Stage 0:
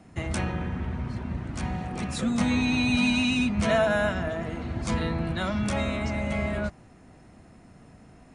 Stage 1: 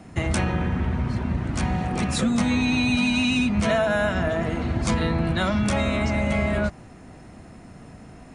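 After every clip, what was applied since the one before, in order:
downward compressor 5 to 1, threshold −26 dBFS, peak gain reduction 7.5 dB
level +7.5 dB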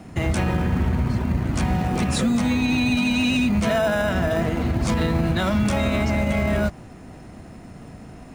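in parallel at −11.5 dB: decimation without filtering 20×
on the sum: brickwall limiter −14 dBFS, peak gain reduction 5.5 dB
level +1.5 dB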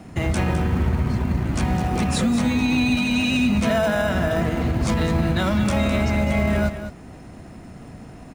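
single-tap delay 208 ms −10.5 dB

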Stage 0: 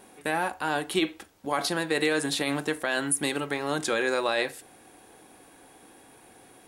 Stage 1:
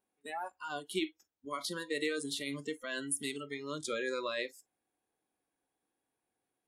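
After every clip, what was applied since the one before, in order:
noise reduction from a noise print of the clip's start 25 dB
level −8.5 dB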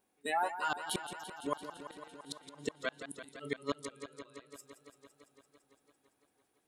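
gate with flip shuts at −28 dBFS, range −36 dB
feedback echo with a swinging delay time 169 ms, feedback 78%, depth 86 cents, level −11 dB
level +7.5 dB

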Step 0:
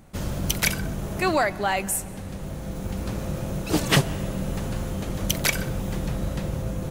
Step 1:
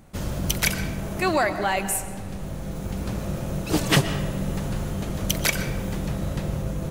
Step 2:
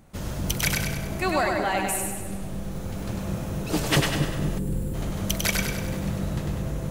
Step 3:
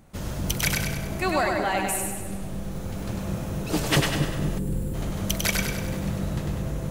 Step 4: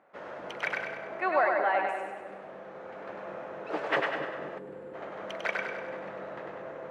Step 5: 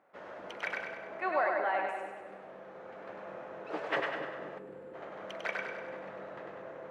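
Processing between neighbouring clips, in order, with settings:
convolution reverb RT60 1.4 s, pre-delay 85 ms, DRR 10.5 dB
echo with a time of its own for lows and highs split 450 Hz, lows 237 ms, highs 99 ms, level −3.5 dB; gain on a spectral selection 0:04.58–0:04.94, 550–7,100 Hz −12 dB; level −3 dB
no processing that can be heard
Chebyshev band-pass filter 510–1,800 Hz, order 2
hum removal 71.8 Hz, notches 38; level −4 dB

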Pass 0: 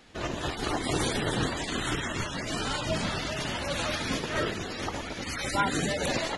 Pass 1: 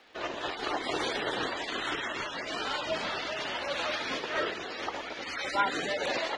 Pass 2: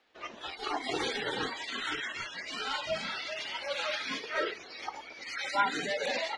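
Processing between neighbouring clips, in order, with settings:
three-way crossover with the lows and the highs turned down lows −19 dB, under 330 Hz, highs −22 dB, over 5,400 Hz; surface crackle 100 per second −60 dBFS
noise reduction from a noise print of the clip's start 12 dB

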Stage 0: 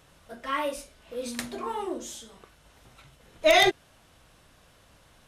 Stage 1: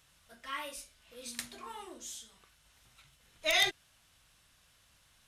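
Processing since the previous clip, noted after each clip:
guitar amp tone stack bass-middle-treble 5-5-5
level +3 dB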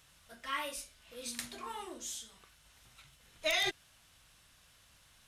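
brickwall limiter −24 dBFS, peak gain reduction 10 dB
level +2.5 dB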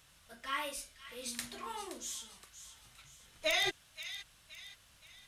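delay with a high-pass on its return 521 ms, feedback 43%, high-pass 1,900 Hz, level −11 dB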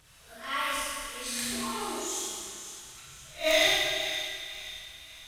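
peak hold with a rise ahead of every peak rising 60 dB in 0.31 s
phase shifter 1.3 Hz, delay 3.3 ms, feedback 54%
four-comb reverb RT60 2 s, combs from 26 ms, DRR −6.5 dB
level −1 dB

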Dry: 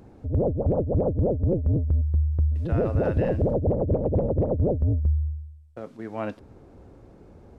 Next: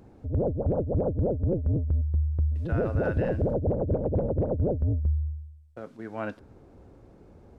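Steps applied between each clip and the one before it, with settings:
dynamic equaliser 1,500 Hz, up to +8 dB, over −59 dBFS, Q 5.7
level −3 dB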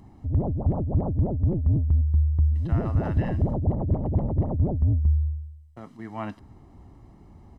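comb filter 1 ms, depth 74%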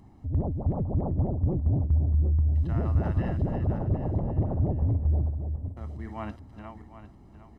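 feedback delay that plays each chunk backwards 379 ms, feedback 49%, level −7 dB
level −3.5 dB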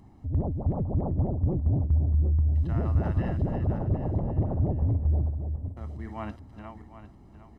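no processing that can be heard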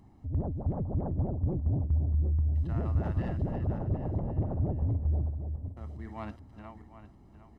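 stylus tracing distortion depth 0.05 ms
level −4 dB

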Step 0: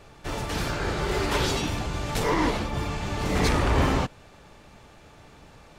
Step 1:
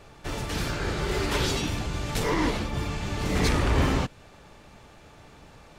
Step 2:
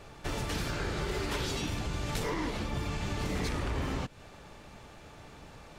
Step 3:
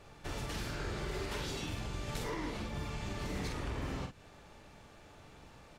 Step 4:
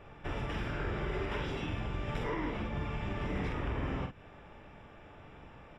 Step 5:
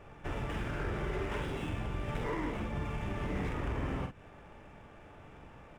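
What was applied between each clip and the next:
dynamic equaliser 820 Hz, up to −4 dB, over −39 dBFS, Q 0.87
downward compressor 6 to 1, threshold −30 dBFS, peak gain reduction 11.5 dB
double-tracking delay 46 ms −5.5 dB; level −6.5 dB
Savitzky-Golay smoothing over 25 samples; level +3.5 dB
running median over 9 samples

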